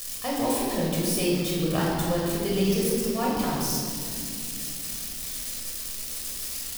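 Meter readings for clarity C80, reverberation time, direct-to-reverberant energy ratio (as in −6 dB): 1.0 dB, 2.4 s, −4.5 dB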